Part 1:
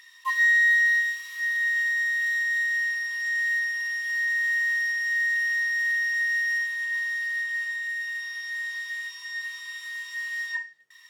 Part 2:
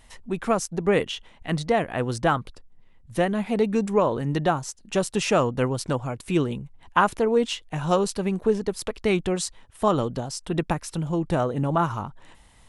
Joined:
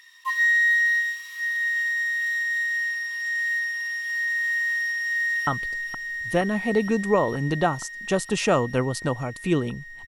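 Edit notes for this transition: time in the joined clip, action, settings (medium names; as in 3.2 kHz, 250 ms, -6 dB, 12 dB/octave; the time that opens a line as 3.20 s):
part 1
4.93–5.47 s: echo throw 470 ms, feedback 85%, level -5.5 dB
5.47 s: go over to part 2 from 2.31 s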